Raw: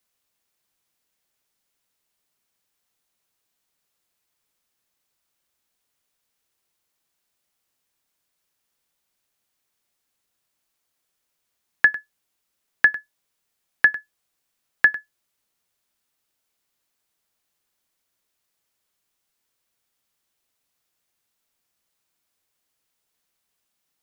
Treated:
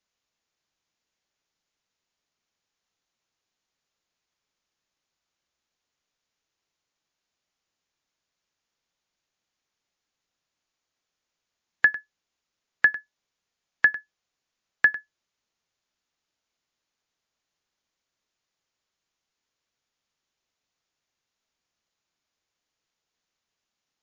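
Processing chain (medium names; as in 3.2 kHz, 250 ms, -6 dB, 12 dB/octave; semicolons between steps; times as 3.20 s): trim -2.5 dB; MP3 80 kbps 16 kHz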